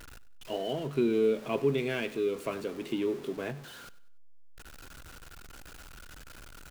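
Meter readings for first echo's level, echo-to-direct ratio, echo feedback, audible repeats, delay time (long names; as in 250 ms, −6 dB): −18.5 dB, −18.0 dB, 36%, 2, 96 ms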